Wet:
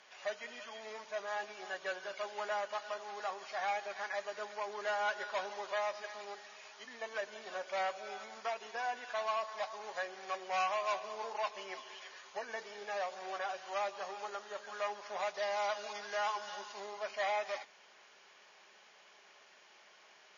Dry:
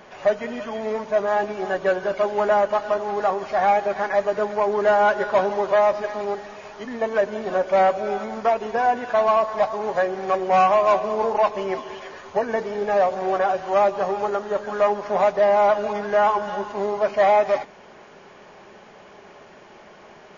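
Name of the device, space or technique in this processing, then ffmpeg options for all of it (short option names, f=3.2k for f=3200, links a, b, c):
piezo pickup straight into a mixer: -filter_complex "[0:a]asettb=1/sr,asplit=3[a][b][c];[a]atrim=end=15.344[d];[b]atrim=start=15.34:end=16.8,asetpts=PTS-STARTPTS,afade=t=in:d=0.004:c=qsin,afade=t=out:st=1.456:d=0.004:c=qsin,equalizer=f=5.1k:w=1.1:g=6[e];[c]atrim=start=16.796[f];[d][e]acrossfade=d=0.004:c1=hsin:c2=qsin[g];[g][f]acrossfade=d=0.004:c1=qsin:c2=hsin,lowpass=5.4k,aderivative,volume=1dB"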